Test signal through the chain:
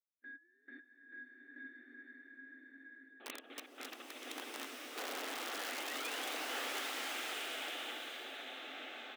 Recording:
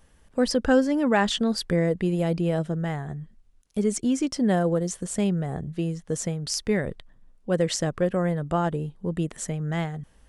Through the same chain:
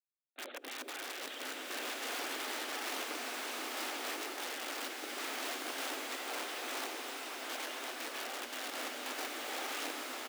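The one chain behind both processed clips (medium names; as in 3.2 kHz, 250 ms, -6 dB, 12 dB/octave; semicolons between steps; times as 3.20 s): expander on every frequency bin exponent 3; spectral noise reduction 30 dB; in parallel at -10 dB: sample-and-hold 23×; on the sum: gate with hold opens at -48 dBFS; compression 8:1, threshold -32 dBFS; on a send: frequency-shifting echo 82 ms, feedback 60%, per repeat +41 Hz, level -19 dB; on the sum: integer overflow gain 38 dB; LPC vocoder at 8 kHz whisper; Butterworth band-stop 990 Hz, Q 4; integer overflow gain 38.5 dB; brick-wall FIR high-pass 240 Hz; swelling reverb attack 1330 ms, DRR -2.5 dB; trim +3 dB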